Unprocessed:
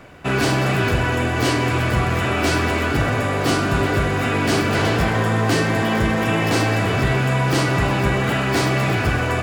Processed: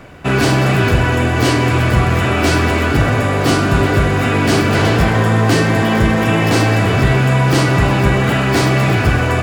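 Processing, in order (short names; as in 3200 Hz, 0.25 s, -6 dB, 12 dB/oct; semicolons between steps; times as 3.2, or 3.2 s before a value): low shelf 260 Hz +3.5 dB; gain +4 dB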